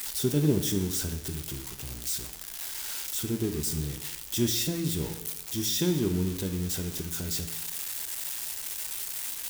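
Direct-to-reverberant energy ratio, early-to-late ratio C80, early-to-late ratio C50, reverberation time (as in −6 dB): 6.5 dB, 12.0 dB, 9.5 dB, 0.90 s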